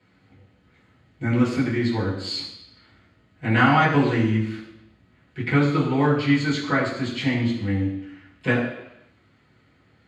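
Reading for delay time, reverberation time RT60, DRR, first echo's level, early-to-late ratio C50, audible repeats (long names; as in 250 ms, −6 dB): no echo audible, 0.85 s, −9.0 dB, no echo audible, 5.0 dB, no echo audible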